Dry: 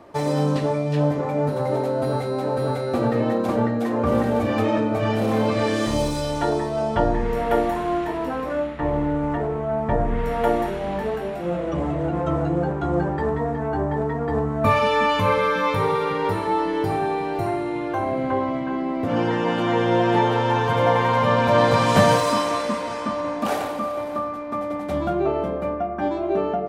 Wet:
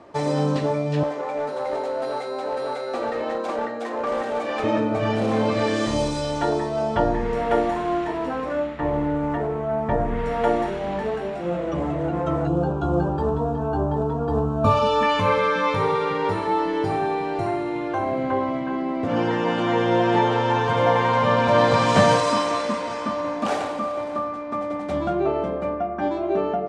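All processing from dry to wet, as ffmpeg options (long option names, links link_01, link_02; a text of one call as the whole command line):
ffmpeg -i in.wav -filter_complex "[0:a]asettb=1/sr,asplit=3[link_01][link_02][link_03];[link_01]atrim=end=1.034[link_04];[link_02]atrim=start=1.03:end=4.64,asetpts=PTS-STARTPTS,afade=type=in:duration=0.004:curve=qsin,afade=type=out:start_time=3.606:duration=0.004:curve=qsin,highpass=470,aeval=exprs='clip(val(0),-1,0.0841)':channel_layout=same[link_05];[link_03]atrim=start=4.636[link_06];[link_04][link_05]acrossfade=duration=0.004:curve1=hsin:curve2=qsin[link_07];[link_07][link_06]acrossfade=duration=0.004:curve1=qsin:curve2=hsin,asettb=1/sr,asplit=3[link_08][link_09][link_10];[link_08]atrim=end=12.474[link_11];[link_09]atrim=start=12.47:end=15.03,asetpts=PTS-STARTPTS,afade=type=in:duration=0.004:curve=qsin,afade=type=out:start_time=2.556:duration=0.004:curve=qsin,asuperstop=centerf=2000:order=4:qfactor=1.8,lowshelf=frequency=84:gain=10.5[link_12];[link_10]atrim=start=15.026[link_13];[link_11][link_12]acrossfade=duration=0.004:curve1=hsin:curve2=qsin[link_14];[link_14][link_13]acrossfade=duration=0.004:curve1=qsin:curve2=hsin,lowpass=frequency=8500:width=0.5412,lowpass=frequency=8500:width=1.3066,lowshelf=frequency=110:gain=-4.5" out.wav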